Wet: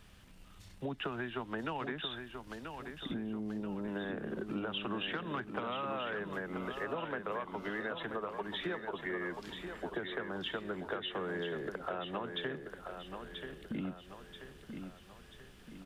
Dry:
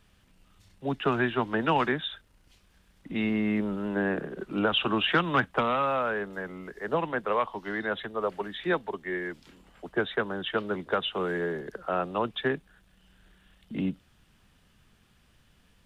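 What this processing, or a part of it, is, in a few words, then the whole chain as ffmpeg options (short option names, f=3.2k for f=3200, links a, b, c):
serial compression, peaks first: -filter_complex "[0:a]acompressor=threshold=-35dB:ratio=5,acompressor=threshold=-43dB:ratio=2,asettb=1/sr,asplit=3[a][b][c];[a]atrim=end=3.144[d];[b]atrim=start=3.14:end=3.88,asetpts=PTS-STARTPTS,afade=t=in:d=0.004:c=qsin,afade=t=out:st=0.736:d=0.004:c=qsin,lowpass=f=1k:w=0.5412,lowpass=f=1k:w=1.3066[e];[c]atrim=start=3.876[f];[d][e]acrossfade=d=0.004:c1=hsin:c2=qsin[g];[g][f]acrossfade=d=0.004:c1=qsin:c2=hsin,aecho=1:1:984|1968|2952|3936|4920|5904:0.447|0.21|0.0987|0.0464|0.0218|0.0102,volume=4dB"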